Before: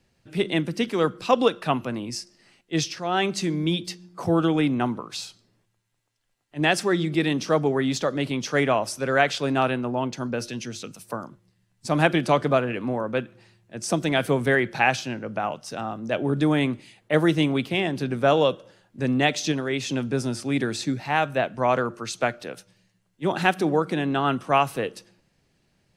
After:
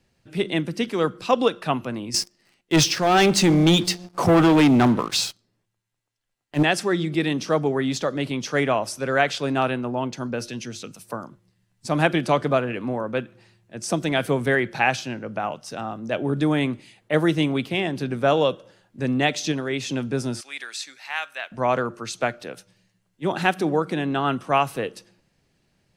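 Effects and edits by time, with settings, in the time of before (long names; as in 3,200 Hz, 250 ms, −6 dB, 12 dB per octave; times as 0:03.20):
0:02.14–0:06.63: leveller curve on the samples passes 3
0:20.41–0:21.52: high-pass filter 1,500 Hz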